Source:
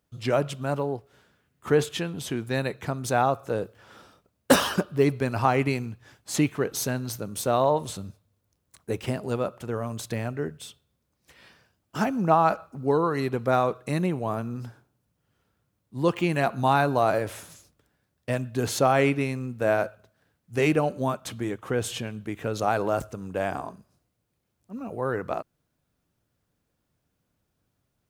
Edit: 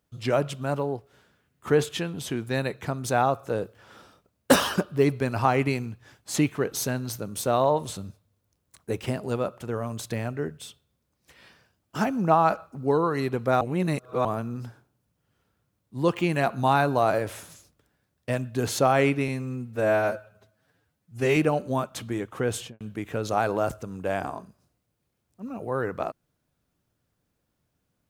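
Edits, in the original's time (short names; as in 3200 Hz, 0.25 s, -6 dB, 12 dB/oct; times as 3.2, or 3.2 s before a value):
13.61–14.25 reverse
19.28–20.67 stretch 1.5×
21.86–22.11 studio fade out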